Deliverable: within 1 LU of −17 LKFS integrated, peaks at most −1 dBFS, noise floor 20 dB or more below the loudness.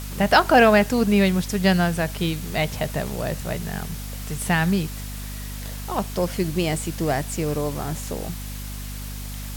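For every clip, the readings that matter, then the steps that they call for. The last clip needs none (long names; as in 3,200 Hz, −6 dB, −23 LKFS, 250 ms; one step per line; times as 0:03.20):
mains hum 50 Hz; hum harmonics up to 250 Hz; level of the hum −31 dBFS; background noise floor −33 dBFS; target noise floor −43 dBFS; integrated loudness −22.5 LKFS; sample peak −3.5 dBFS; target loudness −17.0 LKFS
→ mains-hum notches 50/100/150/200/250 Hz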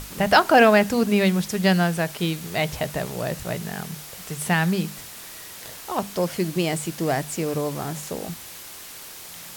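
mains hum none found; background noise floor −40 dBFS; target noise floor −43 dBFS
→ broadband denoise 6 dB, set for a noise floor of −40 dBFS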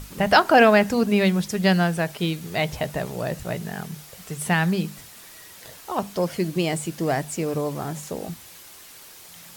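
background noise floor −45 dBFS; integrated loudness −22.5 LKFS; sample peak −2.5 dBFS; target loudness −17.0 LKFS
→ level +5.5 dB
brickwall limiter −1 dBFS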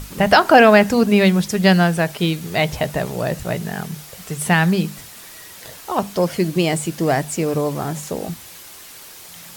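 integrated loudness −17.5 LKFS; sample peak −1.0 dBFS; background noise floor −40 dBFS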